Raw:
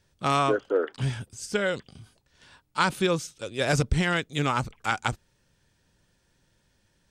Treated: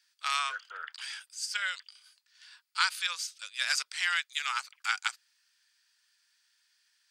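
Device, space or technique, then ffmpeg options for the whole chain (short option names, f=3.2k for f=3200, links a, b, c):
headphones lying on a table: -af "highpass=f=1.4k:w=0.5412,highpass=f=1.4k:w=1.3066,equalizer=f=4.7k:t=o:w=0.22:g=9.5"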